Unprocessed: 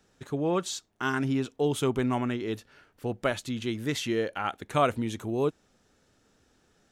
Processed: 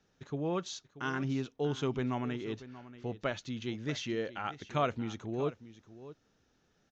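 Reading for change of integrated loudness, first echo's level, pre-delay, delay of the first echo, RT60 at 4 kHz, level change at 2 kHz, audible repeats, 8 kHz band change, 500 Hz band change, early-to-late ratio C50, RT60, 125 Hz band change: −6.5 dB, −15.5 dB, no reverb audible, 634 ms, no reverb audible, −6.5 dB, 1, −9.5 dB, −6.5 dB, no reverb audible, no reverb audible, −4.5 dB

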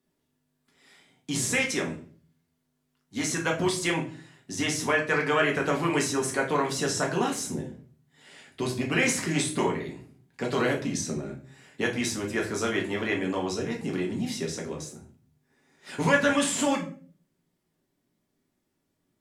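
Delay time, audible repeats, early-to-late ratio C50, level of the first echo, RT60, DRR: no echo audible, no echo audible, 9.5 dB, no echo audible, 0.45 s, −1.5 dB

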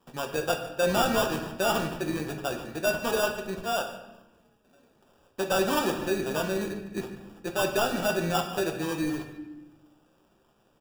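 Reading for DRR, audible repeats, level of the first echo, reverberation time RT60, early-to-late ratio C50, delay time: 3.0 dB, 1, −17.0 dB, 0.95 s, 7.0 dB, 148 ms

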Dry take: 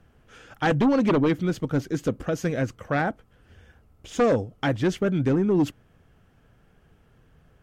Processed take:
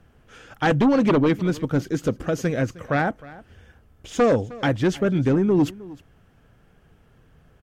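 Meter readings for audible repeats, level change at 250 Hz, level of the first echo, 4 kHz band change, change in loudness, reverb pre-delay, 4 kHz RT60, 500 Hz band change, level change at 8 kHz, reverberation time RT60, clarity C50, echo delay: 1, +2.5 dB, −20.0 dB, +2.5 dB, +2.5 dB, no reverb audible, no reverb audible, +2.5 dB, +2.5 dB, no reverb audible, no reverb audible, 310 ms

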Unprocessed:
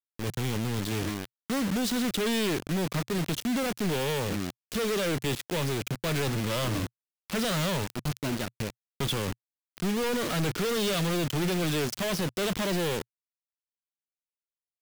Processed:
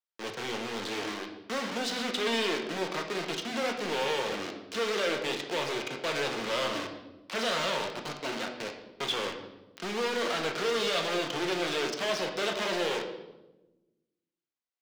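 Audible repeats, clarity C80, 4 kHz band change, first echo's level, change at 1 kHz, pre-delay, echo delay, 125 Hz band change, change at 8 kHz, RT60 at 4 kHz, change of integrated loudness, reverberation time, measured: no echo audible, 9.5 dB, +1.0 dB, no echo audible, +2.0 dB, 4 ms, no echo audible, −16.0 dB, −5.0 dB, 0.80 s, −2.0 dB, 1.1 s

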